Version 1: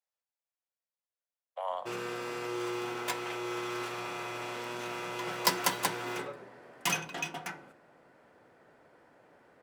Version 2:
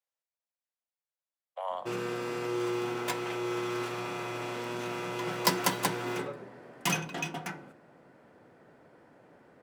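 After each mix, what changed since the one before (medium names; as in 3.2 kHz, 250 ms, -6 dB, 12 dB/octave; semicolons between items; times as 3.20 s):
background: add peaking EQ 170 Hz +7.5 dB 2.6 oct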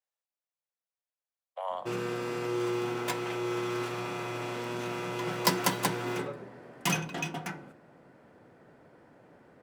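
master: add bass shelf 170 Hz +4.5 dB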